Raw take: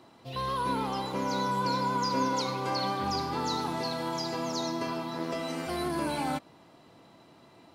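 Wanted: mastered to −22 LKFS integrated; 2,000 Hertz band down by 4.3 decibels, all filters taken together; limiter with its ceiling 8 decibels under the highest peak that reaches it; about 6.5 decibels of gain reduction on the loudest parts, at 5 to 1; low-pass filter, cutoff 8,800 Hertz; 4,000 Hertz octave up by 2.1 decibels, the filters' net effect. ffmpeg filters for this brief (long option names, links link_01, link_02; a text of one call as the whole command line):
ffmpeg -i in.wav -af "lowpass=8800,equalizer=frequency=2000:width_type=o:gain=-7,equalizer=frequency=4000:width_type=o:gain=4,acompressor=threshold=-33dB:ratio=5,volume=18.5dB,alimiter=limit=-13.5dB:level=0:latency=1" out.wav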